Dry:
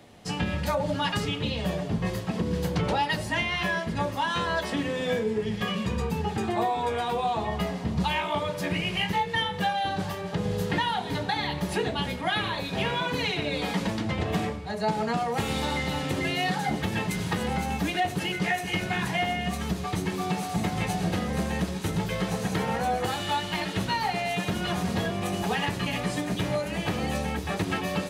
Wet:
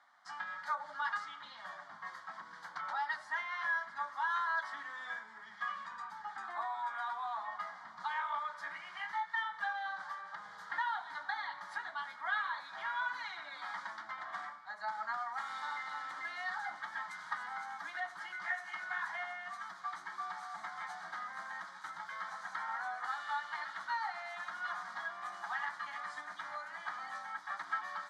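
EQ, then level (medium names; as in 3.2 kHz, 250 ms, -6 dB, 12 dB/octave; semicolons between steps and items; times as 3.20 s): ladder band-pass 1.7 kHz, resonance 35%; static phaser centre 1.1 kHz, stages 4; +7.5 dB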